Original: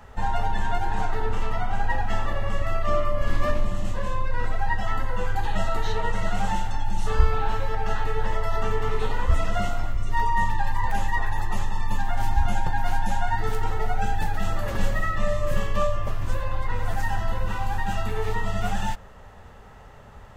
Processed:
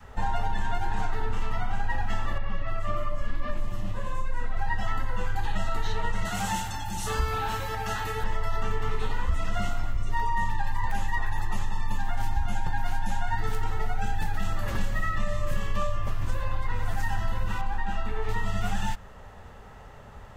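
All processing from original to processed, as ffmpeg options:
ffmpeg -i in.wav -filter_complex "[0:a]asettb=1/sr,asplit=3[link_01][link_02][link_03];[link_01]atrim=end=2.384[link_04];[link_02]atrim=start=2.38:end=4.57,asetpts=PTS-STARTPTS,afade=type=in:duration=0.004:curve=qsin,afade=type=out:start_time=2.186:duration=0.004:curve=qsin,flanger=delay=3:depth=7.5:regen=46:speed=1:shape=triangular,acrossover=split=5200[link_05][link_06];[link_06]adelay=300[link_07];[link_05][link_07]amix=inputs=2:normalize=0,atrim=end_sample=96579[link_08];[link_03]atrim=start=4.566[link_09];[link_04][link_08]acrossfade=duration=0.004:curve1=hsin:curve2=qsin[link_10];[link_10][link_09]acrossfade=duration=0.004:curve1=qsin:curve2=hsin,asettb=1/sr,asplit=3[link_11][link_12][link_13];[link_11]atrim=end=6.254[link_14];[link_12]atrim=start=6.25:end=8.24,asetpts=PTS-STARTPTS,afade=type=in:duration=0.004:curve=qsin,afade=type=out:start_time=1.986:duration=0.004:curve=qsin,highpass=frequency=82:poles=1,aemphasis=mode=production:type=50kf[link_15];[link_13]atrim=start=8.236[link_16];[link_14][link_15]acrossfade=duration=0.004:curve1=hsin:curve2=qsin[link_17];[link_17][link_16]acrossfade=duration=0.004:curve1=qsin:curve2=hsin,asettb=1/sr,asplit=3[link_18][link_19][link_20];[link_18]atrim=end=17.614[link_21];[link_19]atrim=start=17.61:end=18.29,asetpts=PTS-STARTPTS,afade=type=in:duration=0.004:curve=qsin,afade=type=out:start_time=0.676:duration=0.004:curve=qsin,lowpass=frequency=2100:poles=1,equalizer=frequency=120:width_type=o:width=0.78:gain=-12[link_22];[link_20]atrim=start=18.286[link_23];[link_21][link_22]acrossfade=duration=0.004:curve1=hsin:curve2=qsin[link_24];[link_24][link_23]acrossfade=duration=0.004:curve1=qsin:curve2=hsin,adynamicequalizer=threshold=0.00794:dfrequency=540:dqfactor=1.2:tfrequency=540:tqfactor=1.2:attack=5:release=100:ratio=0.375:range=3:mode=cutabove:tftype=bell,acompressor=threshold=-20dB:ratio=6" out.wav

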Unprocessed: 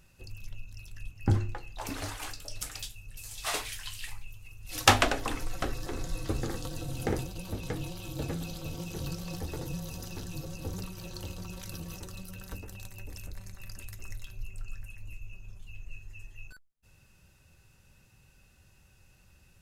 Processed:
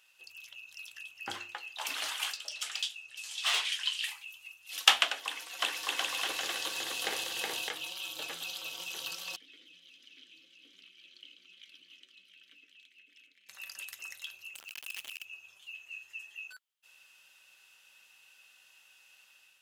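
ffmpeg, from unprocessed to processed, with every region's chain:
ffmpeg -i in.wav -filter_complex "[0:a]asettb=1/sr,asplit=3[link_01][link_02][link_03];[link_01]atrim=end=2.374[link_04];[link_02]atrim=start=2.37:end=4.04,asetpts=PTS-STARTPTS,afade=type=in:duration=0.004:curve=qsin,afade=type=out:start_time=1.666:duration=0.004:curve=qsin,lowpass=7600,asoftclip=type=hard:threshold=-30dB[link_05];[link_03]atrim=start=4.036[link_06];[link_04][link_05]acrossfade=duration=0.004:curve1=hsin:curve2=qsin[link_07];[link_07][link_06]acrossfade=duration=0.004:curve1=qsin:curve2=hsin,asettb=1/sr,asplit=3[link_08][link_09][link_10];[link_08]atrim=end=5.224[link_11];[link_09]atrim=start=5.22:end=7.69,asetpts=PTS-STARTPTS,afade=type=in:duration=0.004:curve=qsin,afade=type=out:start_time=2.466:duration=0.004:curve=qsin,highpass=59,bandreject=frequency=1300:width=9.7,aecho=1:1:370|610.5|766.8|868.4|934.5:0.794|0.631|0.501|0.398|0.316,atrim=end_sample=108927[link_12];[link_10]atrim=start=7.686[link_13];[link_11][link_12]acrossfade=duration=0.004:curve1=hsin:curve2=qsin[link_14];[link_14][link_13]acrossfade=duration=0.004:curve1=qsin:curve2=hsin,asettb=1/sr,asplit=3[link_15][link_16][link_17];[link_15]atrim=end=9.364[link_18];[link_16]atrim=start=9.36:end=13.49,asetpts=PTS-STARTPTS,afade=type=in:duration=0.004:curve=qsin,afade=type=out:start_time=4.126:duration=0.004:curve=qsin,asplit=3[link_19][link_20][link_21];[link_19]bandpass=frequency=270:width_type=q:width=8,volume=0dB[link_22];[link_20]bandpass=frequency=2290:width_type=q:width=8,volume=-6dB[link_23];[link_21]bandpass=frequency=3010:width_type=q:width=8,volume=-9dB[link_24];[link_22][link_23][link_24]amix=inputs=3:normalize=0,aecho=1:1:681:0.282,atrim=end_sample=182133[link_25];[link_17]atrim=start=13.486[link_26];[link_18][link_25]acrossfade=duration=0.004:curve1=hsin:curve2=qsin[link_27];[link_27][link_26]acrossfade=duration=0.004:curve1=qsin:curve2=hsin,asettb=1/sr,asplit=3[link_28][link_29][link_30];[link_28]atrim=end=14.554[link_31];[link_29]atrim=start=14.55:end=15.25,asetpts=PTS-STARTPTS,afade=type=in:duration=0.004:curve=qsin,afade=type=out:start_time=0.696:duration=0.004:curve=qsin,highshelf=frequency=6500:gain=9.5,acompressor=threshold=-38dB:ratio=16:attack=3.2:release=140:knee=1:detection=peak,acrusher=bits=8:dc=4:mix=0:aa=0.000001[link_32];[link_30]atrim=start=15.246[link_33];[link_31][link_32]acrossfade=duration=0.004:curve1=hsin:curve2=qsin[link_34];[link_34][link_33]acrossfade=duration=0.004:curve1=qsin:curve2=hsin,highpass=980,equalizer=frequency=3100:width_type=o:width=0.55:gain=11,dynaudnorm=framelen=170:gausssize=5:maxgain=5dB,volume=-2.5dB" out.wav

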